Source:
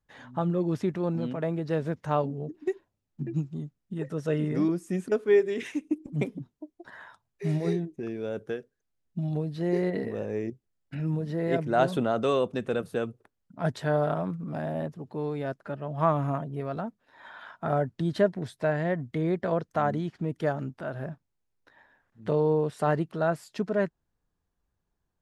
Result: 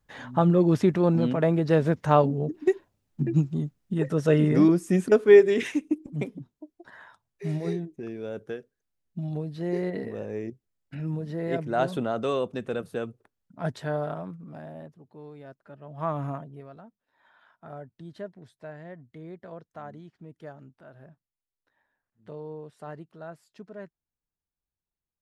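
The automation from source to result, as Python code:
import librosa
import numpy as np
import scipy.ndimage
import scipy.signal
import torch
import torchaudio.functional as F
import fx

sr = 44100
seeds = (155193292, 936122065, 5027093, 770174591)

y = fx.gain(x, sr, db=fx.line((5.59, 7.0), (6.2, -2.0), (13.72, -2.0), (15.1, -13.0), (15.65, -13.0), (16.25, -2.5), (16.79, -15.0)))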